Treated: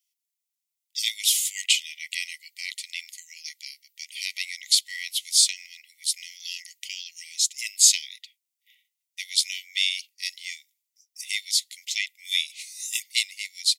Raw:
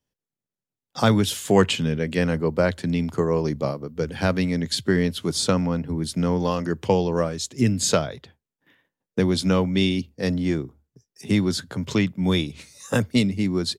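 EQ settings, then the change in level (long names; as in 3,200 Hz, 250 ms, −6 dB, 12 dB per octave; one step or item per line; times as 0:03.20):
linear-phase brick-wall high-pass 1,900 Hz
high-shelf EQ 3,900 Hz +11.5 dB
0.0 dB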